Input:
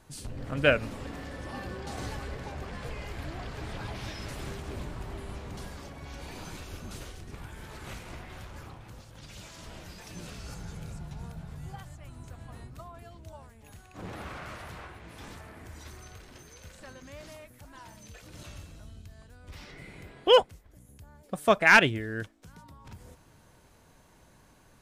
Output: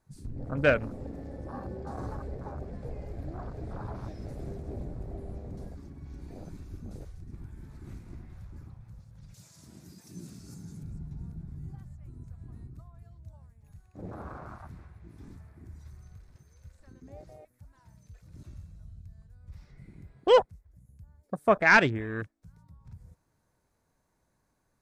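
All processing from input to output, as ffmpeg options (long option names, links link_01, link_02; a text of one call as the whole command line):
ffmpeg -i in.wav -filter_complex "[0:a]asettb=1/sr,asplit=3[link_01][link_02][link_03];[link_01]atrim=end=9.344[link_04];[link_02]atrim=start=9.34:end=10.83,asetpts=PTS-STARTPTS,afade=type=in:duration=0.004:curve=qsin,afade=type=out:start_time=1.486:duration=0.004:curve=qsin,highpass=150,bass=frequency=250:gain=3,treble=frequency=4000:gain=13[link_05];[link_03]atrim=start=10.826[link_06];[link_04][link_05]acrossfade=duration=0.004:curve1=hsin:curve2=qsin[link_07];[link_07][link_06]acrossfade=duration=0.004:curve1=qsin:curve2=hsin,acontrast=44,afwtdn=0.0251,equalizer=frequency=3000:width=2.9:gain=-9.5,volume=-5dB" out.wav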